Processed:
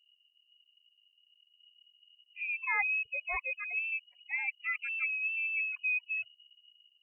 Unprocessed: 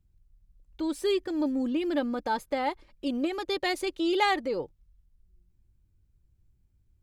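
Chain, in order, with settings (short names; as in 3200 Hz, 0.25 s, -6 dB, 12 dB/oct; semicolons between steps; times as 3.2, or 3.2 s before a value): whole clip reversed; spectral gate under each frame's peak -15 dB strong; inverted band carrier 2900 Hz; gain -5.5 dB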